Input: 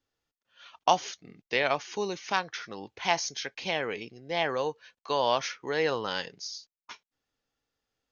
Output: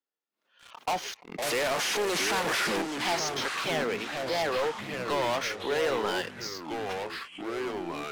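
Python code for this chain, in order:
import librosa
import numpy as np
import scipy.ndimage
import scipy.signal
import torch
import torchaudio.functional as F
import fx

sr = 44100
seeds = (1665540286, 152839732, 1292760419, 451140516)

y = fx.delta_mod(x, sr, bps=64000, step_db=-24.5, at=(1.42, 2.82))
y = scipy.signal.sosfilt(scipy.signal.butter(8, 160.0, 'highpass', fs=sr, output='sos'), y)
y = fx.bass_treble(y, sr, bass_db=-7, treble_db=-6)
y = fx.leveller(y, sr, passes=3)
y = 10.0 ** (-20.5 / 20.0) * np.tanh(y / 10.0 ** (-20.5 / 20.0))
y = fx.echo_pitch(y, sr, ms=281, semitones=-4, count=3, db_per_echo=-6.0)
y = fx.pre_swell(y, sr, db_per_s=130.0)
y = F.gain(torch.from_numpy(y), -4.5).numpy()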